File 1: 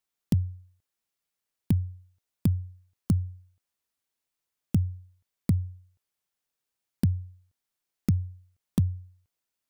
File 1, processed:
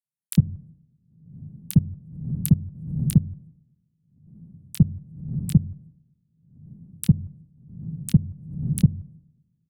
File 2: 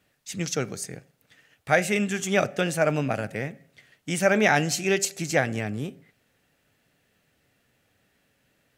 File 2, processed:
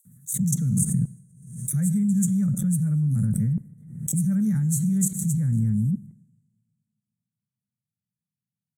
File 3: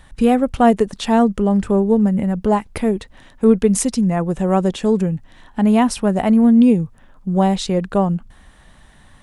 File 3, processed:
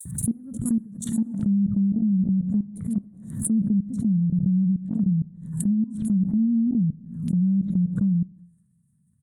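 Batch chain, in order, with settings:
running median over 3 samples
inverse Chebyshev band-stop filter 330–5,300 Hz, stop band 40 dB
downward expander −49 dBFS
high-pass filter 130 Hz 24 dB per octave
high-shelf EQ 7,300 Hz −10 dB
in parallel at −2.5 dB: brickwall limiter −24 dBFS
on the sum: output level in coarse steps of 23 dB
multiband delay without the direct sound highs, lows 50 ms, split 3,400 Hz
treble cut that deepens with the level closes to 370 Hz, closed at −21 dBFS
coupled-rooms reverb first 0.89 s, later 2.7 s, from −26 dB, DRR 15.5 dB
background raised ahead of every attack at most 73 dB per second
loudness normalisation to −24 LKFS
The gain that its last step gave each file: +12.0, +24.0, +2.5 decibels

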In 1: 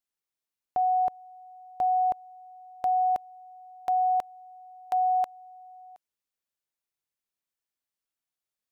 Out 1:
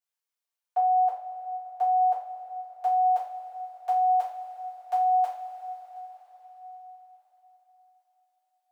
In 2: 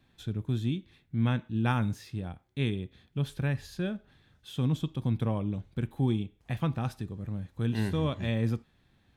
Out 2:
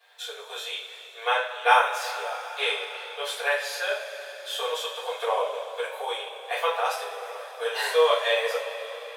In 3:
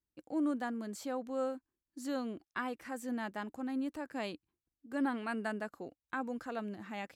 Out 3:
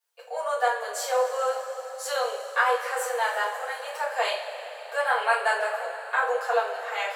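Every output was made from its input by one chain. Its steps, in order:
Butterworth high-pass 460 Hz 96 dB per octave
coupled-rooms reverb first 0.36 s, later 4.9 s, from −18 dB, DRR −10 dB
loudness normalisation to −27 LKFS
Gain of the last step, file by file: −9.5, +4.0, +6.0 decibels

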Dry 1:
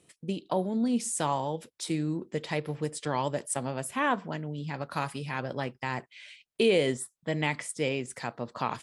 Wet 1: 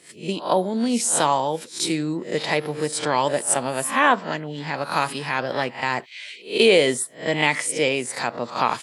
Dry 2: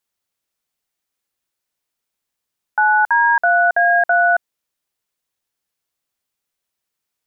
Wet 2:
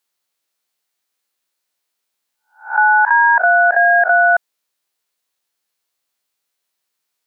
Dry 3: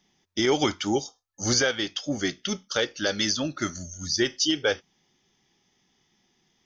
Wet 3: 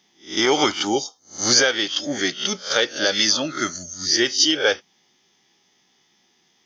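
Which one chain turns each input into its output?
peak hold with a rise ahead of every peak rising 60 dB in 0.33 s
high-pass filter 370 Hz 6 dB per octave
parametric band 4,200 Hz +3 dB 0.28 octaves
normalise the peak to −3 dBFS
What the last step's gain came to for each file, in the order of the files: +10.0, +3.0, +5.5 decibels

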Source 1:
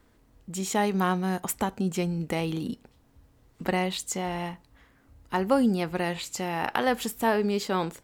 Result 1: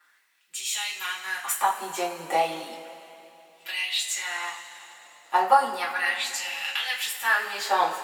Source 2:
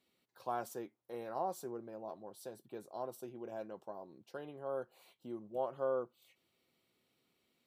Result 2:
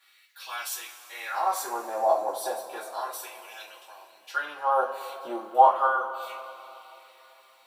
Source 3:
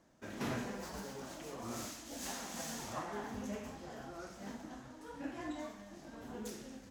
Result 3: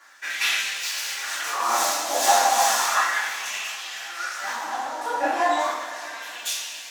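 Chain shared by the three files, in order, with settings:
auto-filter high-pass sine 0.34 Hz 670–2,800 Hz
coupled-rooms reverb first 0.28 s, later 3.2 s, from −19 dB, DRR −7 dB
normalise the peak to −6 dBFS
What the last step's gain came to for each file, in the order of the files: −3.5, +10.5, +14.0 decibels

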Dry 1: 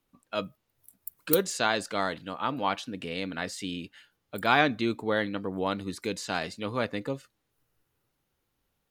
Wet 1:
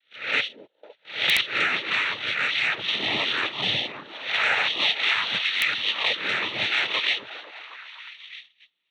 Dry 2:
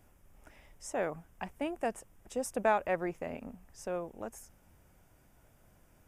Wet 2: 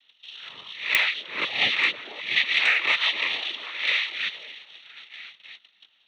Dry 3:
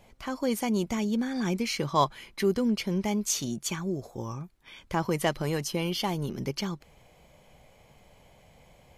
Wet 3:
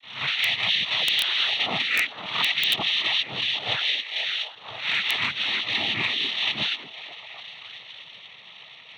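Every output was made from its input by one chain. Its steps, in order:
peak hold with a rise ahead of every peak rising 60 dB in 0.45 s
voice inversion scrambler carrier 3,100 Hz
downward compressor 4 to 1, threshold −30 dBFS
echo through a band-pass that steps 253 ms, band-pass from 350 Hz, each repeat 0.7 octaves, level −6 dB
soft clipping −18.5 dBFS
cochlear-implant simulation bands 12
noise gate −56 dBFS, range −16 dB
wrap-around overflow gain 20 dB
loudness normalisation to −23 LKFS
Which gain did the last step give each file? +10.5, +12.5, +8.5 decibels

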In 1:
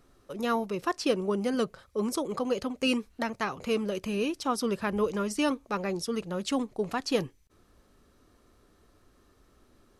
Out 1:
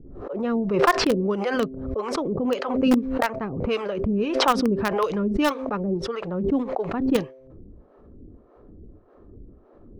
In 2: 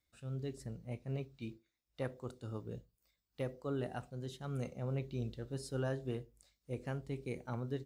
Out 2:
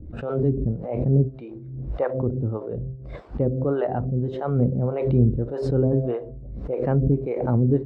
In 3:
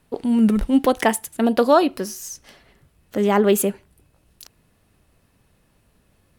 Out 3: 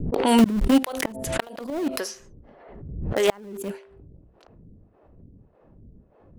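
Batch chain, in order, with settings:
low-pass that shuts in the quiet parts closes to 450 Hz, open at −18.5 dBFS
hum removal 131.1 Hz, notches 5
reversed playback
upward compression, threshold −42 dBFS
reversed playback
two-band tremolo in antiphase 1.7 Hz, depth 100%, crossover 470 Hz
in parallel at −3.5 dB: centre clipping without the shift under −23 dBFS
on the sum: gate with flip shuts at −11 dBFS, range −35 dB
background raised ahead of every attack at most 48 dB per second
loudness normalisation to −24 LKFS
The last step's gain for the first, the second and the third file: +9.5, +23.0, +4.5 decibels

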